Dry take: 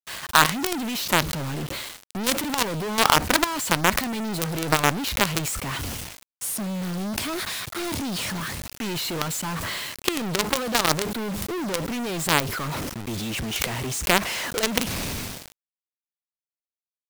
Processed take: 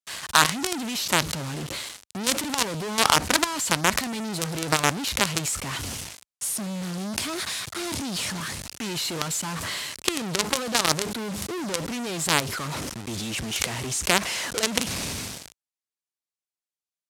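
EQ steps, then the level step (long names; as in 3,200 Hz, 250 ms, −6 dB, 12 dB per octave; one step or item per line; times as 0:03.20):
high-pass filter 53 Hz
low-pass filter 8,600 Hz 12 dB per octave
high-shelf EQ 5,700 Hz +10.5 dB
−2.5 dB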